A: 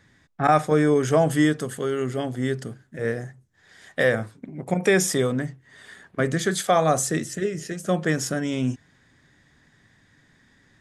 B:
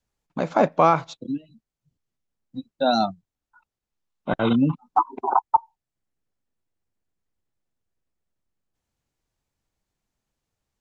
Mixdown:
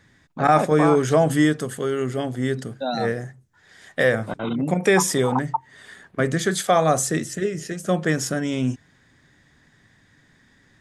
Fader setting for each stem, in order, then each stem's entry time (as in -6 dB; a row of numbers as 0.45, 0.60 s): +1.5, -6.0 dB; 0.00, 0.00 s